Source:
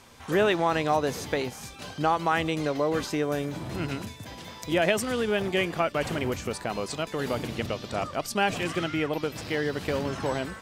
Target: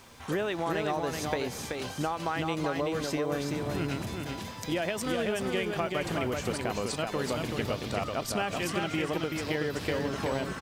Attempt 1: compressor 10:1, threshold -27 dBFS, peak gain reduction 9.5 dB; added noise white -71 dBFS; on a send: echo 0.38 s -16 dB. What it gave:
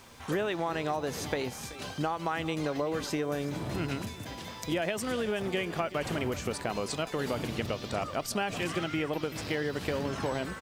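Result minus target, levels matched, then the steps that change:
echo-to-direct -12 dB
change: echo 0.38 s -4 dB

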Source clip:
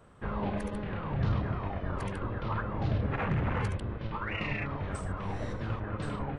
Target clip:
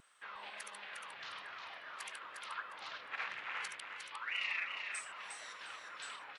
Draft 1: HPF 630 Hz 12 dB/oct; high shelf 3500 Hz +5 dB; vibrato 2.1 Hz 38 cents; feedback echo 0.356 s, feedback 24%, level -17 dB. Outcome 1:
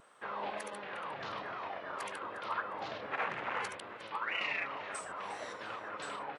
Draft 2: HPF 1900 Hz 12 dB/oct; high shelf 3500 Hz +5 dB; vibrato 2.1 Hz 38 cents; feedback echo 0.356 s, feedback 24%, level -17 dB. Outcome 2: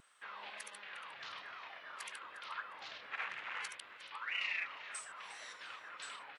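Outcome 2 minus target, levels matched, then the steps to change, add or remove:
echo-to-direct -11 dB
change: feedback echo 0.356 s, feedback 24%, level -6 dB

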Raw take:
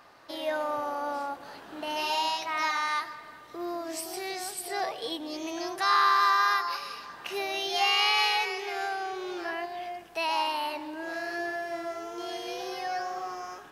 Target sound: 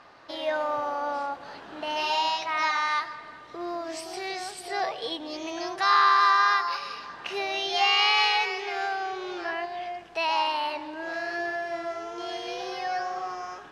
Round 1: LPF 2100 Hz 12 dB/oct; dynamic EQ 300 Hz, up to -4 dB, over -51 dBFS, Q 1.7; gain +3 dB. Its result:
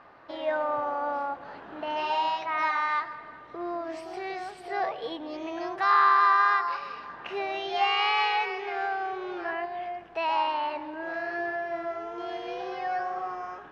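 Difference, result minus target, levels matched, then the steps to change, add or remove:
4000 Hz band -6.5 dB
change: LPF 5500 Hz 12 dB/oct

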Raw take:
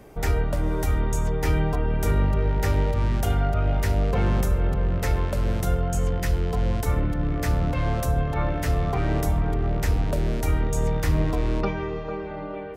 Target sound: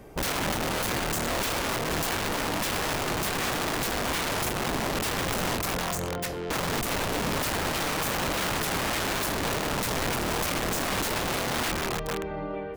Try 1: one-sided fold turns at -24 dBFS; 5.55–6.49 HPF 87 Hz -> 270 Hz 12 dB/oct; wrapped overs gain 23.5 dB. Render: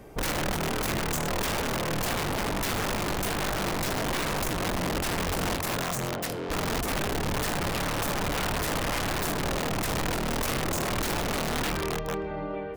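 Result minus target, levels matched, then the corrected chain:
one-sided fold: distortion +22 dB
one-sided fold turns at -15.5 dBFS; 5.55–6.49 HPF 87 Hz -> 270 Hz 12 dB/oct; wrapped overs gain 23.5 dB

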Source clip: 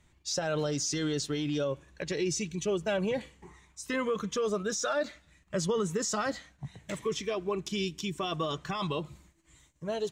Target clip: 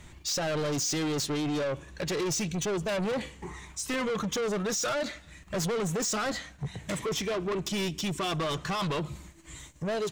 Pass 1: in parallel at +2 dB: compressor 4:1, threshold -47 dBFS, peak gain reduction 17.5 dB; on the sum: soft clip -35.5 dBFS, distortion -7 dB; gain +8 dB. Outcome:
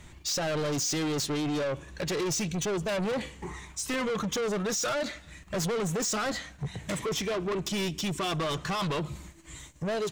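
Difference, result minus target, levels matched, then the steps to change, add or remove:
compressor: peak gain reduction -5.5 dB
change: compressor 4:1, threshold -54 dBFS, peak gain reduction 23 dB

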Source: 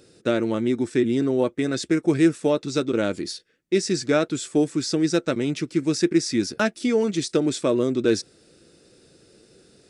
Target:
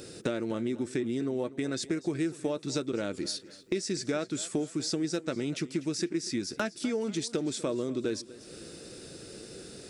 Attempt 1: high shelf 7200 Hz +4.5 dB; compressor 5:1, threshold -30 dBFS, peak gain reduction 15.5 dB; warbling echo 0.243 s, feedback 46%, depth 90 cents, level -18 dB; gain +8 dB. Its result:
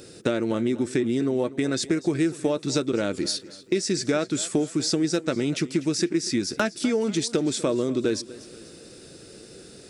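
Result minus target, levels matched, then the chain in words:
compressor: peak gain reduction -7 dB
high shelf 7200 Hz +4.5 dB; compressor 5:1, threshold -39 dBFS, peak gain reduction 22.5 dB; warbling echo 0.243 s, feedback 46%, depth 90 cents, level -18 dB; gain +8 dB

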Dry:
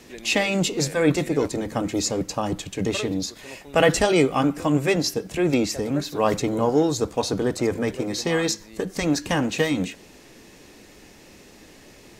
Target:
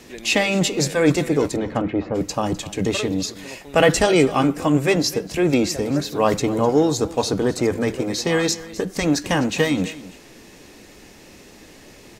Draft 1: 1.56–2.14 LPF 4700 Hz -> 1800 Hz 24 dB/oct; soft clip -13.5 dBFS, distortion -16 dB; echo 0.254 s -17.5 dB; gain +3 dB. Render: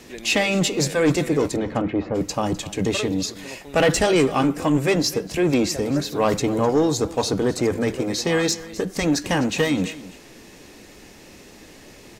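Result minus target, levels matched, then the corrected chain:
soft clip: distortion +16 dB
1.56–2.14 LPF 4700 Hz -> 1800 Hz 24 dB/oct; soft clip -3 dBFS, distortion -32 dB; echo 0.254 s -17.5 dB; gain +3 dB

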